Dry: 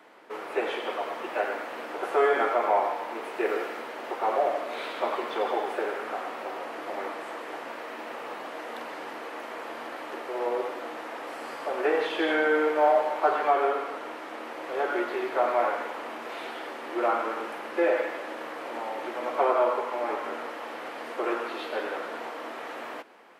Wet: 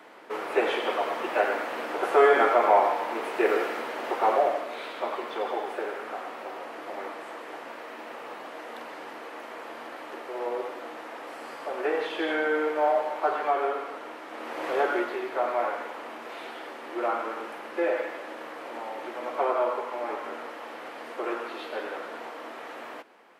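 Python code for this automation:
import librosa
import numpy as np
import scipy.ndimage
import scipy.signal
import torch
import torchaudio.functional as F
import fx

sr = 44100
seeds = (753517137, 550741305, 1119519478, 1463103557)

y = fx.gain(x, sr, db=fx.line((4.26, 4.0), (4.78, -2.5), (14.27, -2.5), (14.67, 5.5), (15.22, -2.5)))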